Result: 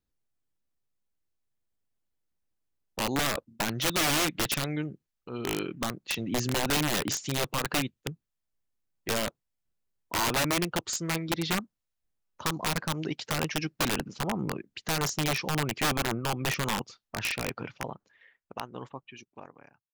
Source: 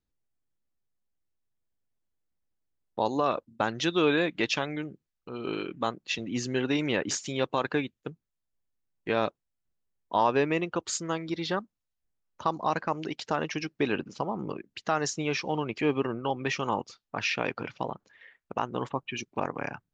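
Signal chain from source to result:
fade-out on the ending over 3.27 s
dynamic equaliser 130 Hz, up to +7 dB, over −46 dBFS, Q 1
wrap-around overflow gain 21 dB

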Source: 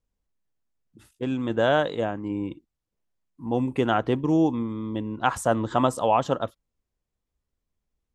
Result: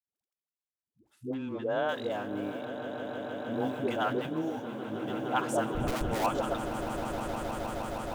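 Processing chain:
mu-law and A-law mismatch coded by A
high-pass filter 40 Hz
low-shelf EQ 200 Hz −11.5 dB
notch filter 1,900 Hz, Q 23
in parallel at +1.5 dB: downward compressor 6 to 1, threshold −31 dBFS, peak gain reduction 13.5 dB
0:05.65–0:06.14: on the sum: comparator with hysteresis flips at −20 dBFS
all-pass dispersion highs, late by 124 ms, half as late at 430 Hz
0:01.34–0:01.89: head-to-tape spacing loss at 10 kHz 23 dB
echo that builds up and dies away 156 ms, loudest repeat 8, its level −13 dB
0:04.26–0:05.06: micro pitch shift up and down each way 34 cents → 53 cents
level −8 dB

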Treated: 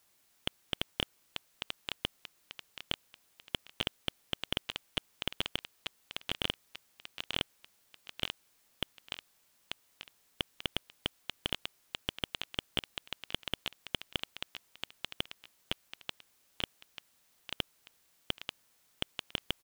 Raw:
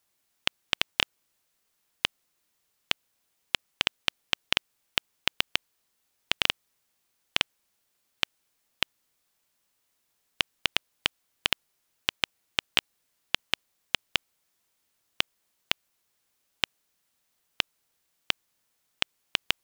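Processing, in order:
repeating echo 889 ms, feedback 33%, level −18 dB
slew-rate limiting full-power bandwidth 160 Hz
level +5.5 dB

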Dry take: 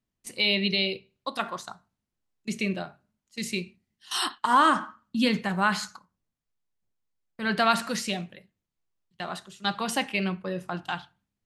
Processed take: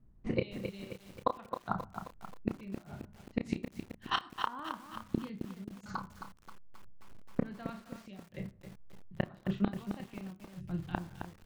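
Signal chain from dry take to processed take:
RIAA equalisation playback
low-pass that shuts in the quiet parts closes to 1,400 Hz, open at −22 dBFS
0:02.77–0:03.45: downward compressor 12 to 1, threshold −32 dBFS, peak gain reduction 11 dB
0:05.45–0:05.86: Chebyshev band-stop filter 420–6,100 Hz, order 4
0:10.46–0:10.95: guitar amp tone stack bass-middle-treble 10-0-1
gate with flip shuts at −25 dBFS, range −35 dB
double-tracking delay 31 ms −7.5 dB
convolution reverb RT60 0.60 s, pre-delay 12 ms, DRR 18 dB
feedback echo at a low word length 266 ms, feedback 55%, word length 10 bits, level −7.5 dB
level +9 dB

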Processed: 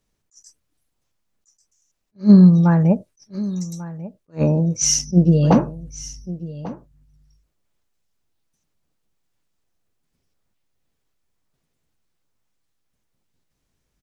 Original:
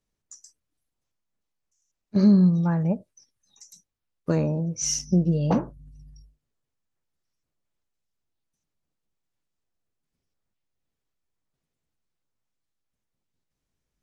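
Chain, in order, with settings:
single-tap delay 1,143 ms −17 dB
level that may rise only so fast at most 340 dB per second
level +8.5 dB

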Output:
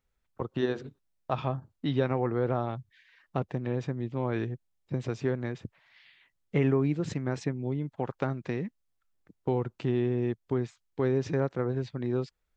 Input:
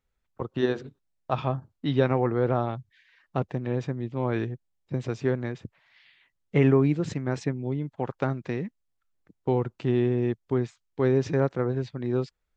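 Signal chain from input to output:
downward compressor 1.5 to 1, threshold −30 dBFS, peak gain reduction 5.5 dB

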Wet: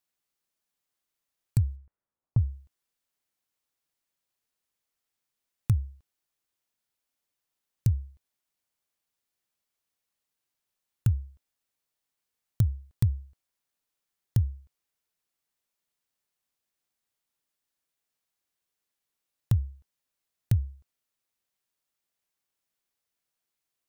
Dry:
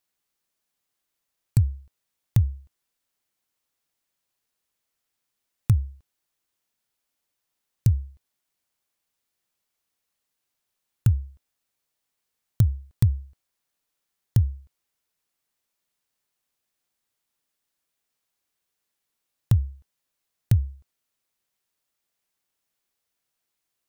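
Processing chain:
0:01.75–0:02.37: low-pass filter 2,200 Hz → 1,100 Hz 24 dB per octave
level −4.5 dB

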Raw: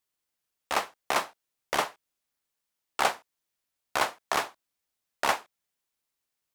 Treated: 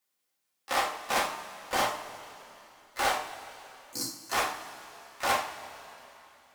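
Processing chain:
high-pass filter 120 Hz 24 dB per octave
hum removal 151.3 Hz, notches 20
gain on a spectral selection 0:03.24–0:04.33, 360–4,100 Hz −30 dB
hard clipping −26.5 dBFS, distortion −6 dB
pitch-shifted copies added +7 semitones −12 dB
coupled-rooms reverb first 0.35 s, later 3.3 s, from −18 dB, DRR −2.5 dB

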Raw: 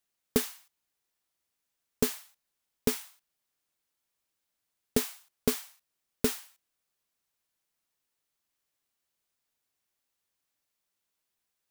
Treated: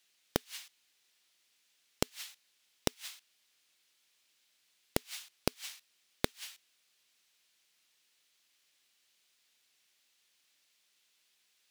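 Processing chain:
meter weighting curve D
gate with flip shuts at −16 dBFS, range −39 dB
level +4.5 dB

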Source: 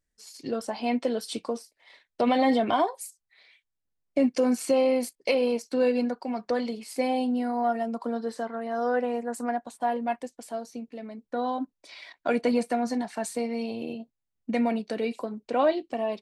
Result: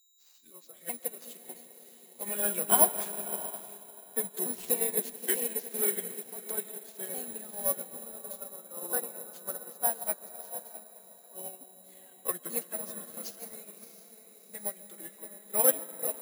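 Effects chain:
pitch shifter swept by a sawtooth −6 semitones, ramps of 893 ms
high-pass filter 800 Hz 6 dB per octave
feedback delay with all-pass diffusion 663 ms, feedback 48%, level −6 dB
steady tone 3,900 Hz −50 dBFS
convolution reverb RT60 4.1 s, pre-delay 95 ms, DRR 5 dB
bad sample-rate conversion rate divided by 4×, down none, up zero stuff
expander for the loud parts 2.5 to 1, over −32 dBFS
level +1.5 dB

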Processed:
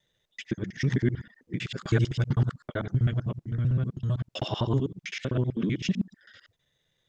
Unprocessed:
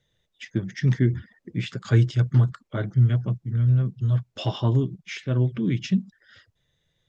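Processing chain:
reversed piece by piece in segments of 64 ms
low-shelf EQ 160 Hz −9 dB

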